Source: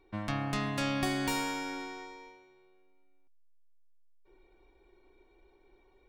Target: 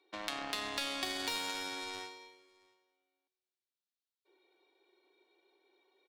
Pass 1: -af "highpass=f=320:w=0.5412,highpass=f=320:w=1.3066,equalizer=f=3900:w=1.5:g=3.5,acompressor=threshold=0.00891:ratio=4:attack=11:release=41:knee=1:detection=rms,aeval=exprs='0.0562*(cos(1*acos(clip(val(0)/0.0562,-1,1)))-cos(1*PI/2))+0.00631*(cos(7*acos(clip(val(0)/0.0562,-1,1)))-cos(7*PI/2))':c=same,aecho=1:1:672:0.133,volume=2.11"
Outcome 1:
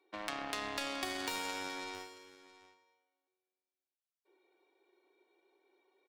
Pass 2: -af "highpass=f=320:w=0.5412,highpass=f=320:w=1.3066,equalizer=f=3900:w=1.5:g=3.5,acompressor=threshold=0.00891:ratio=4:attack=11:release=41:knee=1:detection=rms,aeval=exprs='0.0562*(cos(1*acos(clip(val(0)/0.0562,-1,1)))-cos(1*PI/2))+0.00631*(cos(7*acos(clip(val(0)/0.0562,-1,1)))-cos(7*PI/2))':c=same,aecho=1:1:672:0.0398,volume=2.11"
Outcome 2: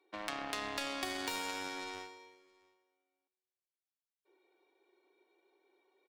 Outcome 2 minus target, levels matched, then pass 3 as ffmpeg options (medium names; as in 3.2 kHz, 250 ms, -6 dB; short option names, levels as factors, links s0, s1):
4 kHz band -2.5 dB
-af "highpass=f=320:w=0.5412,highpass=f=320:w=1.3066,equalizer=f=3900:w=1.5:g=11.5,acompressor=threshold=0.00891:ratio=4:attack=11:release=41:knee=1:detection=rms,aeval=exprs='0.0562*(cos(1*acos(clip(val(0)/0.0562,-1,1)))-cos(1*PI/2))+0.00631*(cos(7*acos(clip(val(0)/0.0562,-1,1)))-cos(7*PI/2))':c=same,aecho=1:1:672:0.0398,volume=2.11"